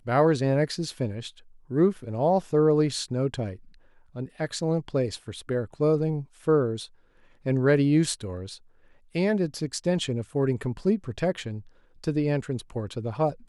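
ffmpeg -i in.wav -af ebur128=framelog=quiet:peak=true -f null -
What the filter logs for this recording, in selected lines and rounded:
Integrated loudness:
  I:         -26.4 LUFS
  Threshold: -37.1 LUFS
Loudness range:
  LRA:         3.3 LU
  Threshold: -47.2 LUFS
  LRA low:   -29.0 LUFS
  LRA high:  -25.8 LUFS
True peak:
  Peak:       -9.4 dBFS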